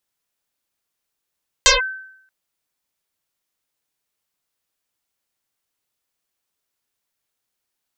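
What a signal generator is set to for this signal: FM tone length 0.63 s, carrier 1540 Hz, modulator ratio 0.34, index 12, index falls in 0.15 s linear, decay 0.73 s, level -6.5 dB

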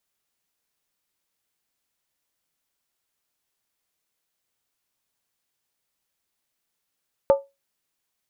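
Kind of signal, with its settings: skin hit, lowest mode 554 Hz, decay 0.22 s, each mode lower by 10 dB, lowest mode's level -9 dB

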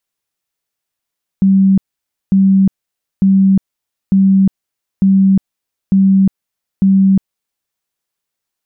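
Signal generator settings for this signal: tone bursts 193 Hz, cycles 69, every 0.90 s, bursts 7, -6 dBFS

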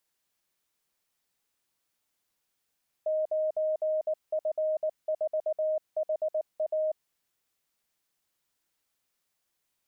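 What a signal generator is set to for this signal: Morse "9F4HA" 19 wpm 623 Hz -25 dBFS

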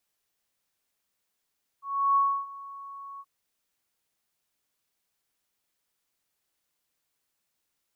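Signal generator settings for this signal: ADSR sine 1110 Hz, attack 0.339 s, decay 0.299 s, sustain -20.5 dB, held 1.38 s, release 46 ms -18.5 dBFS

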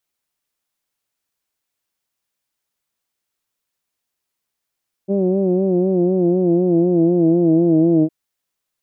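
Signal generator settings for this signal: formant vowel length 3.01 s, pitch 192 Hz, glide -3 st, vibrato 4 Hz, vibrato depth 0.75 st, F1 320 Hz, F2 630 Hz, F3 2500 Hz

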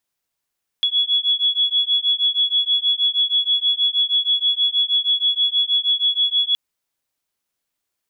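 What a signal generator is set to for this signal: beating tones 3370 Hz, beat 6.3 Hz, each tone -19 dBFS 5.72 s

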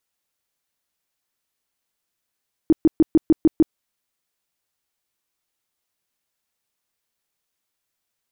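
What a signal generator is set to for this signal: tone bursts 319 Hz, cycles 8, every 0.15 s, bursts 7, -9 dBFS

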